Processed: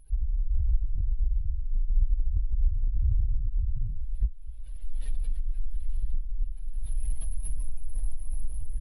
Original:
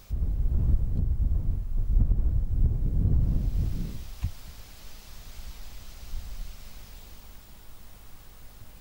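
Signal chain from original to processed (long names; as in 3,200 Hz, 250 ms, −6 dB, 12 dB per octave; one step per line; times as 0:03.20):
expanding power law on the bin magnitudes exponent 2.2
camcorder AGC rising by 25 dB per second
pitch shifter −6.5 semitones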